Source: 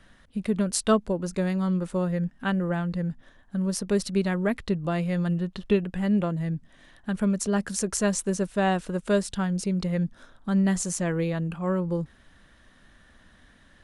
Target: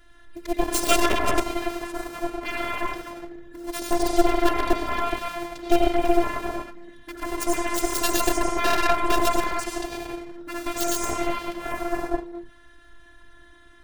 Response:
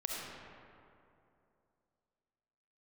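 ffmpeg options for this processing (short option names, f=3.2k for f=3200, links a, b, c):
-filter_complex "[0:a]acrusher=bits=6:mode=log:mix=0:aa=0.000001[a];[1:a]atrim=start_sample=2205,afade=t=out:st=0.39:d=0.01,atrim=end_sample=17640,asetrate=32634,aresample=44100[b];[a][b]afir=irnorm=-1:irlink=0,afftfilt=real='hypot(re,im)*cos(PI*b)':imag='0':win_size=512:overlap=0.75,aeval=exprs='0.398*(cos(1*acos(clip(val(0)/0.398,-1,1)))-cos(1*PI/2))+0.112*(cos(8*acos(clip(val(0)/0.398,-1,1)))-cos(8*PI/2))':c=same,volume=4.5dB"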